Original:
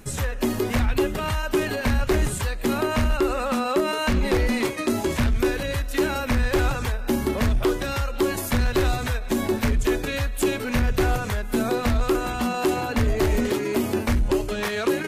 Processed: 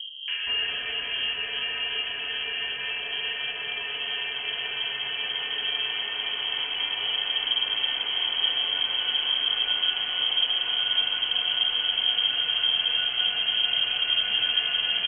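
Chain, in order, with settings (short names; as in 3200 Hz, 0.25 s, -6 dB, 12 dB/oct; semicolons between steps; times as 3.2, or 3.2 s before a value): Paulstretch 34×, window 0.50 s, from 6.08; three bands offset in time lows, mids, highs 0.28/0.47 s, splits 200/1800 Hz; inverted band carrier 3200 Hz; gain -5.5 dB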